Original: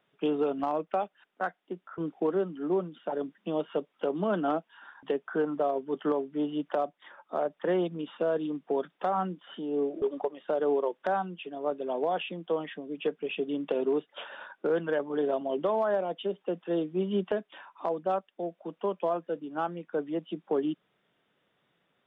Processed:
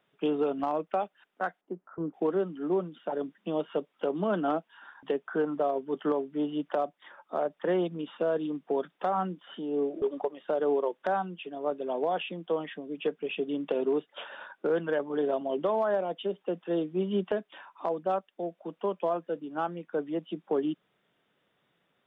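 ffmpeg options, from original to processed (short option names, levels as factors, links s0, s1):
-filter_complex "[0:a]asettb=1/sr,asplit=3[s0][s1][s2];[s0]atrim=end=1.614[s3];[s1]atrim=start=1.61:end=2.14,asetpts=PTS-STARTPTS,afade=t=in:d=0.004:c=qsin,afade=t=out:st=0.526:d=0.004:c=qsin,lowpass=1100[s4];[s2]atrim=start=2.136[s5];[s3][s4]acrossfade=d=0.004:c1=hsin:c2=qsin[s6];[s6][s5]acrossfade=d=0.004:c1=qsin:c2=hsin"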